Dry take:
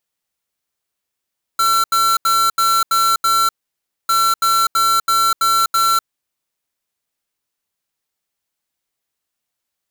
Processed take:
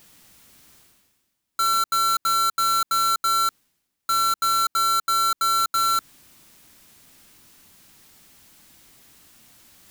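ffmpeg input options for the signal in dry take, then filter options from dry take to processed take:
-f lavfi -i "aevalsrc='0.188*(2*lt(mod(1350*t,1),0.5)-1)*clip(min(mod(mod(t,2.5),0.33),0.25-mod(mod(t,2.5),0.33))/0.005,0,1)*lt(mod(t,2.5),1.98)':duration=5:sample_rate=44100"
-af "lowshelf=frequency=360:width_type=q:width=1.5:gain=6,alimiter=limit=-19dB:level=0:latency=1:release=92,areverse,acompressor=mode=upward:threshold=-31dB:ratio=2.5,areverse"

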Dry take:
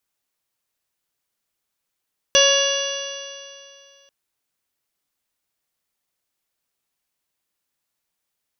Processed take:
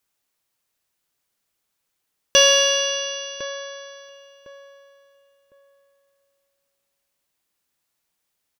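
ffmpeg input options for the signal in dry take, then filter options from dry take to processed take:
-f lavfi -i "aevalsrc='0.168*pow(10,-3*t/2.44)*sin(2*PI*556.33*t)+0.0501*pow(10,-3*t/2.44)*sin(2*PI*1114.67*t)+0.0794*pow(10,-3*t/2.44)*sin(2*PI*1676.98*t)+0.02*pow(10,-3*t/2.44)*sin(2*PI*2245.25*t)+0.168*pow(10,-3*t/2.44)*sin(2*PI*2821.39*t)+0.119*pow(10,-3*t/2.44)*sin(2*PI*3407.3*t)+0.0316*pow(10,-3*t/2.44)*sin(2*PI*4004.79*t)+0.0562*pow(10,-3*t/2.44)*sin(2*PI*4615.64*t)+0.0355*pow(10,-3*t/2.44)*sin(2*PI*5241.56*t)+0.15*pow(10,-3*t/2.44)*sin(2*PI*5884.15*t)':duration=1.74:sample_rate=44100"
-filter_complex "[0:a]asplit=2[link_01][link_02];[link_02]adelay=1056,lowpass=frequency=1200:poles=1,volume=-12dB,asplit=2[link_03][link_04];[link_04]adelay=1056,lowpass=frequency=1200:poles=1,volume=0.28,asplit=2[link_05][link_06];[link_06]adelay=1056,lowpass=frequency=1200:poles=1,volume=0.28[link_07];[link_01][link_03][link_05][link_07]amix=inputs=4:normalize=0,asplit=2[link_08][link_09];[link_09]asoftclip=type=tanh:threshold=-19dB,volume=-8dB[link_10];[link_08][link_10]amix=inputs=2:normalize=0"

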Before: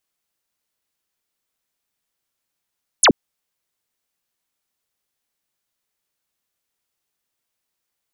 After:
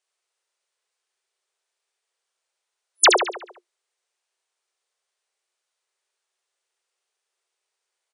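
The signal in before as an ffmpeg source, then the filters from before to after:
-f lavfi -i "aevalsrc='0.376*clip(t/0.002,0,1)*clip((0.08-t)/0.002,0,1)*sin(2*PI*12000*0.08/log(170/12000)*(exp(log(170/12000)*t/0.08)-1))':duration=0.08:sample_rate=44100"
-filter_complex "[0:a]afftfilt=real='re*between(b*sr/4096,350,10000)':imag='im*between(b*sr/4096,350,10000)':win_size=4096:overlap=0.75,asplit=2[link_01][link_02];[link_02]adelay=70,lowpass=frequency=4500:poles=1,volume=-3.5dB,asplit=2[link_03][link_04];[link_04]adelay=70,lowpass=frequency=4500:poles=1,volume=0.53,asplit=2[link_05][link_06];[link_06]adelay=70,lowpass=frequency=4500:poles=1,volume=0.53,asplit=2[link_07][link_08];[link_08]adelay=70,lowpass=frequency=4500:poles=1,volume=0.53,asplit=2[link_09][link_10];[link_10]adelay=70,lowpass=frequency=4500:poles=1,volume=0.53,asplit=2[link_11][link_12];[link_12]adelay=70,lowpass=frequency=4500:poles=1,volume=0.53,asplit=2[link_13][link_14];[link_14]adelay=70,lowpass=frequency=4500:poles=1,volume=0.53[link_15];[link_01][link_03][link_05][link_07][link_09][link_11][link_13][link_15]amix=inputs=8:normalize=0"

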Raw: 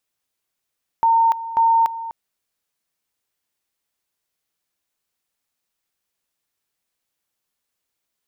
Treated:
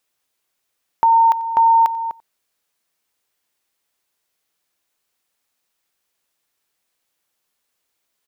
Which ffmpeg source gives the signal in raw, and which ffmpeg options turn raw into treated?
-f lavfi -i "aevalsrc='pow(10,(-12-14.5*gte(mod(t,0.54),0.29))/20)*sin(2*PI*913*t)':duration=1.08:sample_rate=44100"
-filter_complex "[0:a]bass=frequency=250:gain=-5,treble=frequency=4000:gain=-1,asplit=2[link_01][link_02];[link_02]acompressor=threshold=-24dB:ratio=6,volume=0dB[link_03];[link_01][link_03]amix=inputs=2:normalize=0,aecho=1:1:91:0.075"

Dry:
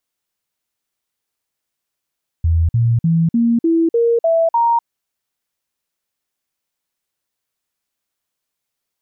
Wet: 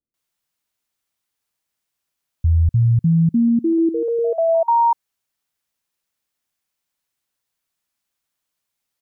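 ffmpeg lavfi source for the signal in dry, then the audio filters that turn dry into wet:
-f lavfi -i "aevalsrc='0.282*clip(min(mod(t,0.3),0.25-mod(t,0.3))/0.005,0,1)*sin(2*PI*82.5*pow(2,floor(t/0.3)/2)*mod(t,0.3))':duration=2.4:sample_rate=44100"
-filter_complex "[0:a]acrossover=split=430[link_01][link_02];[link_02]adelay=140[link_03];[link_01][link_03]amix=inputs=2:normalize=0"

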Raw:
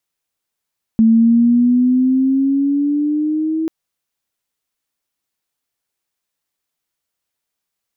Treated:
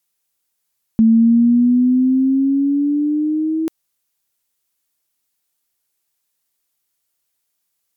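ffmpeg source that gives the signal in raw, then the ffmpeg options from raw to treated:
-f lavfi -i "aevalsrc='pow(10,(-7-9*t/2.69)/20)*sin(2*PI*222*2.69/(6.5*log(2)/12)*(exp(6.5*log(2)/12*t/2.69)-1))':duration=2.69:sample_rate=44100"
-af "aemphasis=mode=production:type=cd"

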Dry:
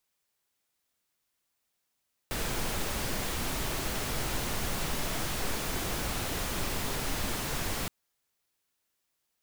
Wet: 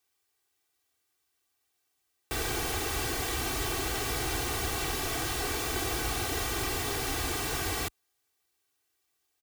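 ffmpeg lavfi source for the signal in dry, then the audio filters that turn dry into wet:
-f lavfi -i "anoisesrc=color=pink:amplitude=0.129:duration=5.57:sample_rate=44100:seed=1"
-af "highpass=46,aecho=1:1:2.6:0.81"

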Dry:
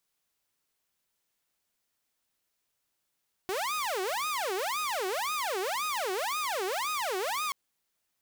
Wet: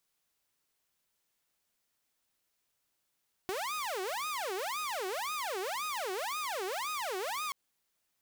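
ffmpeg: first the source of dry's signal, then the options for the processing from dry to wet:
-f lavfi -i "aevalsrc='0.0447*(2*mod((808.5*t-441.5/(2*PI*1.9)*sin(2*PI*1.9*t)),1)-1)':duration=4.03:sample_rate=44100"
-af "acompressor=threshold=-34dB:ratio=6"

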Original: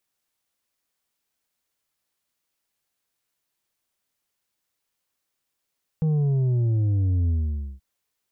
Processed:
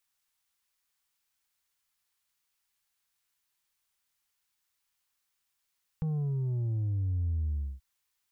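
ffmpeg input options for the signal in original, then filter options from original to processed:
-f lavfi -i "aevalsrc='0.106*clip((1.78-t)/0.51,0,1)*tanh(1.88*sin(2*PI*160*1.78/log(65/160)*(exp(log(65/160)*t/1.78)-1)))/tanh(1.88)':duration=1.78:sample_rate=44100"
-af "equalizer=frequency=125:width_type=o:width=1:gain=-5,equalizer=frequency=250:width_type=o:width=1:gain=-9,equalizer=frequency=500:width_type=o:width=1:gain=-8,acompressor=threshold=-28dB:ratio=6,asuperstop=centerf=670:order=4:qfactor=7.1"

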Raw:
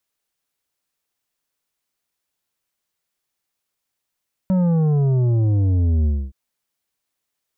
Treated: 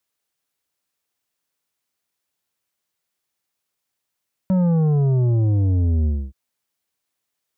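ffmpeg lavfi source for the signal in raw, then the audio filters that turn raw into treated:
-f lavfi -i "aevalsrc='0.168*clip((1.82-t)/0.26,0,1)*tanh(2.66*sin(2*PI*190*1.82/log(65/190)*(exp(log(65/190)*t/1.82)-1)))/tanh(2.66)':duration=1.82:sample_rate=44100"
-af "highpass=58"

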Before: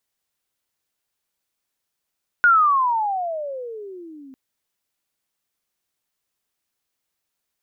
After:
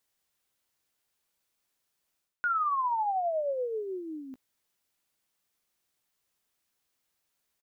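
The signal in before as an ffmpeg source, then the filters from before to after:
-f lavfi -i "aevalsrc='pow(10,(-10-29.5*t/1.9)/20)*sin(2*PI*1460*1.9/(-30*log(2)/12)*(exp(-30*log(2)/12*t/1.9)-1))':duration=1.9:sample_rate=44100"
-filter_complex "[0:a]areverse,acompressor=threshold=-28dB:ratio=8,areverse,asplit=2[link_01][link_02];[link_02]adelay=16,volume=-13dB[link_03];[link_01][link_03]amix=inputs=2:normalize=0"

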